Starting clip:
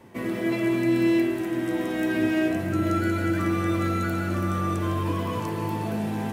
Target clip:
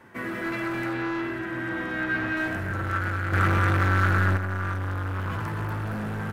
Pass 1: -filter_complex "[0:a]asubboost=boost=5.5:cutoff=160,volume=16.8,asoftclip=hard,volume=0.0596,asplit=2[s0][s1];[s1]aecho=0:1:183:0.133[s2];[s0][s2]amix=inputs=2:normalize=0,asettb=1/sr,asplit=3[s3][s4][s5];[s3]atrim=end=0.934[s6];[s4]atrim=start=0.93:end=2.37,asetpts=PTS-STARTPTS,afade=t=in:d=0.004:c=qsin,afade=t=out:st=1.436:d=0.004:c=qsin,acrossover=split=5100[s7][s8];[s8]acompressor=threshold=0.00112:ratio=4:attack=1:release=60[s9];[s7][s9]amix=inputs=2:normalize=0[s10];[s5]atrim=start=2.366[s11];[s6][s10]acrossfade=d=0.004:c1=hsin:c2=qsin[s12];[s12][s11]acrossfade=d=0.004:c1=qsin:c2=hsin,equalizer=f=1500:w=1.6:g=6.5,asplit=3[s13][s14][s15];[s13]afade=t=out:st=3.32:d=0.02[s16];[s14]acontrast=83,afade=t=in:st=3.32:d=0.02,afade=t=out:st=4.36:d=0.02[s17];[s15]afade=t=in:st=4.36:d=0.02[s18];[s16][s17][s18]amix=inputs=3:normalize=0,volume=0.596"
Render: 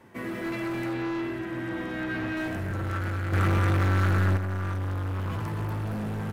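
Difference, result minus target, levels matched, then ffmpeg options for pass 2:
2 kHz band -5.0 dB
-filter_complex "[0:a]asubboost=boost=5.5:cutoff=160,volume=16.8,asoftclip=hard,volume=0.0596,asplit=2[s0][s1];[s1]aecho=0:1:183:0.133[s2];[s0][s2]amix=inputs=2:normalize=0,asettb=1/sr,asplit=3[s3][s4][s5];[s3]atrim=end=0.934[s6];[s4]atrim=start=0.93:end=2.37,asetpts=PTS-STARTPTS,afade=t=in:d=0.004:c=qsin,afade=t=out:st=1.436:d=0.004:c=qsin,acrossover=split=5100[s7][s8];[s8]acompressor=threshold=0.00112:ratio=4:attack=1:release=60[s9];[s7][s9]amix=inputs=2:normalize=0[s10];[s5]atrim=start=2.366[s11];[s6][s10]acrossfade=d=0.004:c1=hsin:c2=qsin[s12];[s12][s11]acrossfade=d=0.004:c1=qsin:c2=hsin,equalizer=f=1500:w=1.6:g=15,asplit=3[s13][s14][s15];[s13]afade=t=out:st=3.32:d=0.02[s16];[s14]acontrast=83,afade=t=in:st=3.32:d=0.02,afade=t=out:st=4.36:d=0.02[s17];[s15]afade=t=in:st=4.36:d=0.02[s18];[s16][s17][s18]amix=inputs=3:normalize=0,volume=0.596"

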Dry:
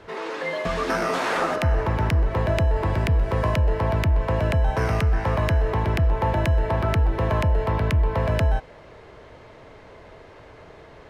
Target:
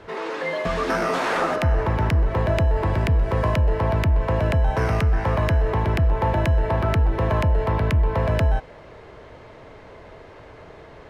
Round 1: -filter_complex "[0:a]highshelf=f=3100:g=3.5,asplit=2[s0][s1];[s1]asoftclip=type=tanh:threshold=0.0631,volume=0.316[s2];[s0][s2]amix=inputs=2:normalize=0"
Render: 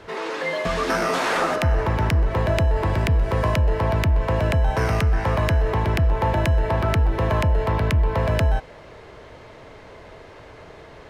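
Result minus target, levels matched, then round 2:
8 kHz band +5.0 dB
-filter_complex "[0:a]highshelf=f=3100:g=-3,asplit=2[s0][s1];[s1]asoftclip=type=tanh:threshold=0.0631,volume=0.316[s2];[s0][s2]amix=inputs=2:normalize=0"

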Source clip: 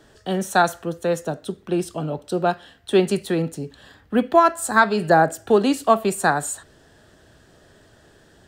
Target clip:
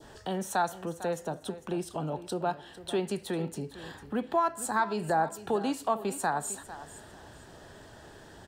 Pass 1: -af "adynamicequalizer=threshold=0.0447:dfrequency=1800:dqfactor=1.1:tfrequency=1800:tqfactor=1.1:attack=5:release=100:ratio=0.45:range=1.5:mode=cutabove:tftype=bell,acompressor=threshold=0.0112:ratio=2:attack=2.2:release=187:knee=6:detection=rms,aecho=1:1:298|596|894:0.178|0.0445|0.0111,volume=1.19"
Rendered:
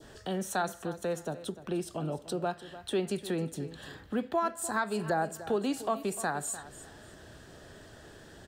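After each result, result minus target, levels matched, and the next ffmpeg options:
echo 153 ms early; 1 kHz band -3.0 dB
-af "adynamicequalizer=threshold=0.0447:dfrequency=1800:dqfactor=1.1:tfrequency=1800:tqfactor=1.1:attack=5:release=100:ratio=0.45:range=1.5:mode=cutabove:tftype=bell,acompressor=threshold=0.0112:ratio=2:attack=2.2:release=187:knee=6:detection=rms,aecho=1:1:451|902|1353:0.178|0.0445|0.0111,volume=1.19"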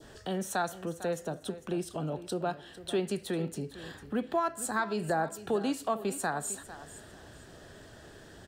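1 kHz band -3.0 dB
-af "adynamicequalizer=threshold=0.0447:dfrequency=1800:dqfactor=1.1:tfrequency=1800:tqfactor=1.1:attack=5:release=100:ratio=0.45:range=1.5:mode=cutabove:tftype=bell,acompressor=threshold=0.0112:ratio=2:attack=2.2:release=187:knee=6:detection=rms,equalizer=f=900:t=o:w=0.47:g=7.5,aecho=1:1:451|902|1353:0.178|0.0445|0.0111,volume=1.19"

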